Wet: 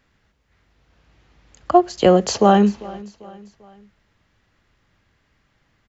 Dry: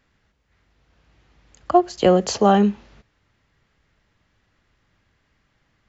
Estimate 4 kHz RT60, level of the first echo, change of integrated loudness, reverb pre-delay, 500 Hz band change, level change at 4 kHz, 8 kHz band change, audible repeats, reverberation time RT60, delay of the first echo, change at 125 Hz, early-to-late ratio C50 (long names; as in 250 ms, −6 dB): no reverb audible, −21.0 dB, +2.0 dB, no reverb audible, +2.0 dB, +2.0 dB, can't be measured, 3, no reverb audible, 395 ms, +2.0 dB, no reverb audible